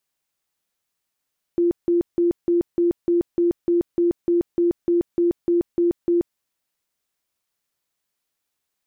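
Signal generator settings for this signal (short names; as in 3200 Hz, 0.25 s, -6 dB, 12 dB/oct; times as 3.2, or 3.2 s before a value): tone bursts 345 Hz, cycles 45, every 0.30 s, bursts 16, -15 dBFS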